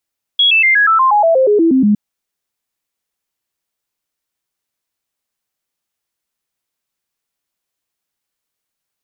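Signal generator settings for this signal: stepped sine 3.33 kHz down, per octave 3, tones 13, 0.12 s, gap 0.00 s -7.5 dBFS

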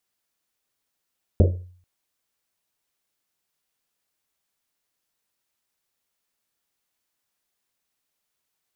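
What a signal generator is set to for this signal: Risset drum length 0.44 s, pitch 90 Hz, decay 0.53 s, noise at 440 Hz, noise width 280 Hz, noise 30%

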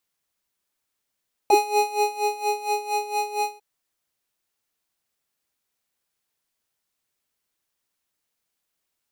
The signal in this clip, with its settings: synth patch with tremolo G#5, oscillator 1 square, oscillator 2 sine, interval -12 st, oscillator 2 level -5.5 dB, noise -23 dB, filter highpass, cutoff 130 Hz, Q 4.8, filter envelope 2.5 oct, filter decay 0.05 s, attack 2.3 ms, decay 0.72 s, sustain -5 dB, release 0.15 s, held 1.95 s, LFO 4.3 Hz, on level 15 dB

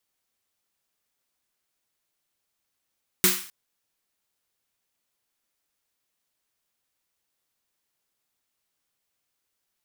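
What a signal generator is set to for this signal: snare drum length 0.26 s, tones 190 Hz, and 360 Hz, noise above 1.1 kHz, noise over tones 6.5 dB, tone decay 0.29 s, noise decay 0.48 s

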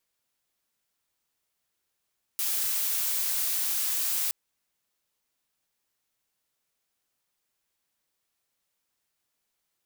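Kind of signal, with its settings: noise blue, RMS -28 dBFS 1.92 s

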